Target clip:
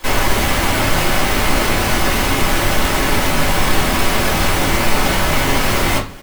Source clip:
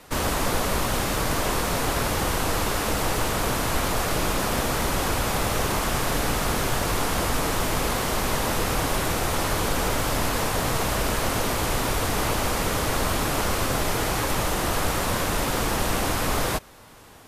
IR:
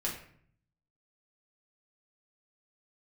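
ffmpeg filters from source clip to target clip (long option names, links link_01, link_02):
-filter_complex "[0:a]asplit=2[link_01][link_02];[link_02]alimiter=limit=-22dB:level=0:latency=1:release=17,volume=-3dB[link_03];[link_01][link_03]amix=inputs=2:normalize=0,atempo=1.6,acrossover=split=360[link_04][link_05];[link_04]asoftclip=type=hard:threshold=-24dB[link_06];[link_06][link_05]amix=inputs=2:normalize=0[link_07];[1:a]atrim=start_sample=2205[link_08];[link_07][link_08]afir=irnorm=-1:irlink=0,asetrate=76440,aresample=44100,volume=2.5dB"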